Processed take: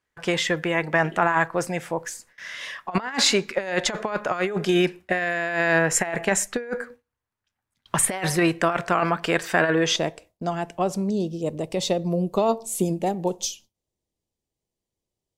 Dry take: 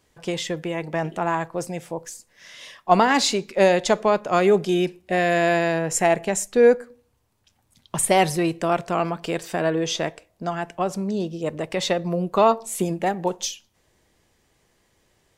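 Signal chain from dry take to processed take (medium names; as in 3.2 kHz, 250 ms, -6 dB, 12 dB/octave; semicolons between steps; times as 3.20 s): peaking EQ 1.6 kHz +11 dB 1.3 oct, from 9.96 s -5.5 dB, from 11.10 s -15 dB; gate with hold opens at -37 dBFS; compressor with a negative ratio -19 dBFS, ratio -0.5; trim -1.5 dB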